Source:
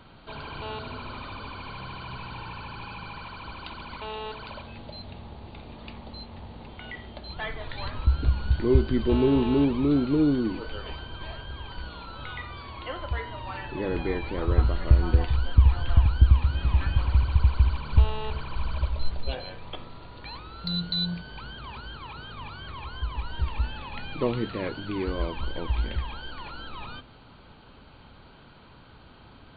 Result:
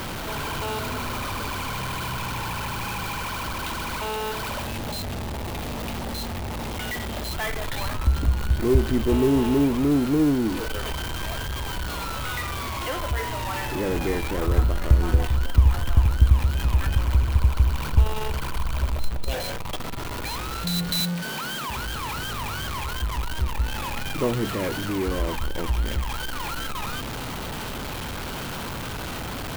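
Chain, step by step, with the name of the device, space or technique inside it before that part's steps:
0:21.00–0:21.69: Chebyshev high-pass filter 150 Hz, order 5
early CD player with a faulty converter (converter with a step at zero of −26.5 dBFS; converter with an unsteady clock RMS 0.027 ms)

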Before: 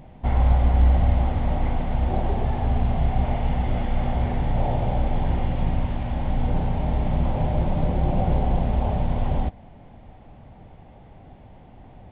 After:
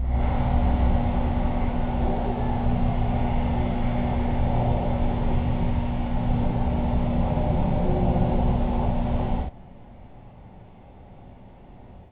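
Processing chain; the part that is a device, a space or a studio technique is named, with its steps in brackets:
reverse reverb (reversed playback; convolution reverb RT60 0.85 s, pre-delay 25 ms, DRR −6.5 dB; reversed playback)
level −7 dB

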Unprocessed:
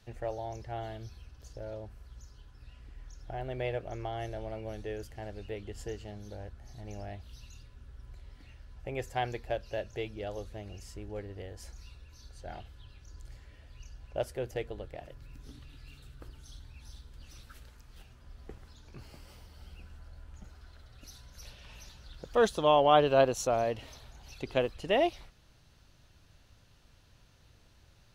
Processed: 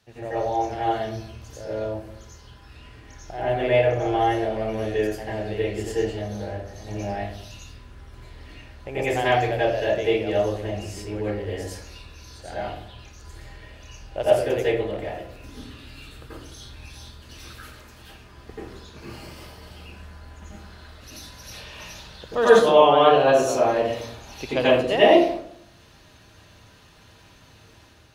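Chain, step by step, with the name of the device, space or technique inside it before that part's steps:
far laptop microphone (convolution reverb RT60 0.70 s, pre-delay 81 ms, DRR −10 dB; high-pass filter 170 Hz 6 dB per octave; automatic gain control gain up to 4.5 dB)

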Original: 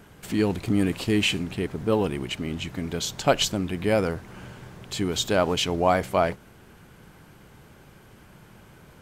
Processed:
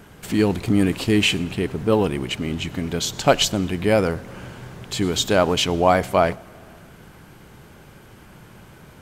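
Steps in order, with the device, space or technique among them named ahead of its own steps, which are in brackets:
compressed reverb return (on a send at −10 dB: convolution reverb RT60 1.1 s, pre-delay 93 ms + downward compressor, threshold −35 dBFS, peak gain reduction 18 dB)
on the sum: level +4.5 dB

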